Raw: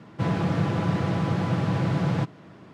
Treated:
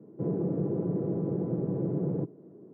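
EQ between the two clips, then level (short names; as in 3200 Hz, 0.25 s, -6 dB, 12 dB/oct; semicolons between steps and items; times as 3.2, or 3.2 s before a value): HPF 130 Hz 24 dB/oct; synth low-pass 410 Hz, resonance Q 3.9; -7.0 dB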